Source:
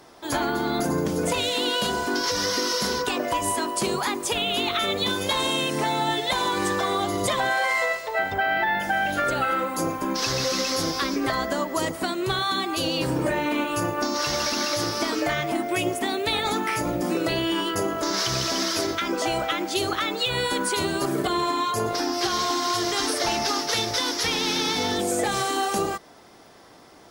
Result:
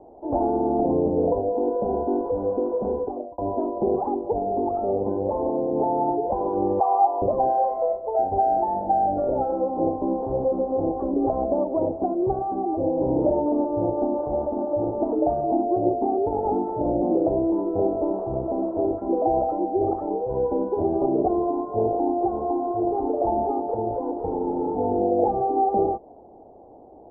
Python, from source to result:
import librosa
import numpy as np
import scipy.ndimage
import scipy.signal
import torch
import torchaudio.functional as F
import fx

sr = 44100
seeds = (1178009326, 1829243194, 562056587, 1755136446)

y = fx.highpass_res(x, sr, hz=920.0, q=4.8, at=(6.8, 7.22))
y = fx.edit(y, sr, fx.fade_out_span(start_s=2.87, length_s=0.51), tone=tone)
y = scipy.signal.sosfilt(scipy.signal.cheby1(5, 1.0, 820.0, 'lowpass', fs=sr, output='sos'), y)
y = fx.peak_eq(y, sr, hz=150.0, db=-11.0, octaves=0.96)
y = y * 10.0 ** (6.5 / 20.0)